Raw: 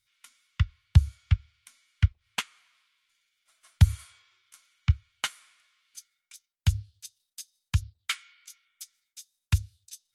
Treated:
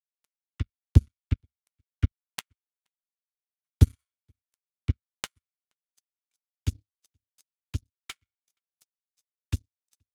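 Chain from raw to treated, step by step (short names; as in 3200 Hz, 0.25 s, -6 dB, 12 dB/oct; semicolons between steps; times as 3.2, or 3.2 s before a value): on a send: echo 0.474 s -23 dB; on the sum: power-law curve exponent 2; gain +3.5 dB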